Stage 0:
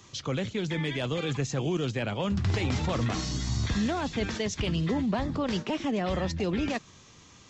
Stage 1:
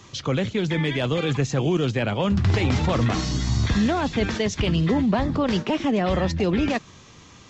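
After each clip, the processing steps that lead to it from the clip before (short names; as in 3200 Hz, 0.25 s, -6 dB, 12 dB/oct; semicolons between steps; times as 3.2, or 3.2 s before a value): high shelf 5800 Hz -7.5 dB; gain +7 dB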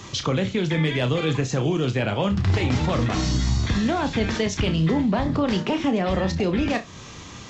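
compressor 2:1, threshold -34 dBFS, peak gain reduction 10 dB; on a send: flutter echo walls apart 5.4 m, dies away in 0.21 s; on the sum: gain +7.5 dB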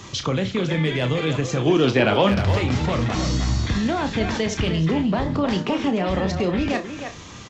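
spectral gain 1.67–2.43, 210–6100 Hz +7 dB; speakerphone echo 0.31 s, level -7 dB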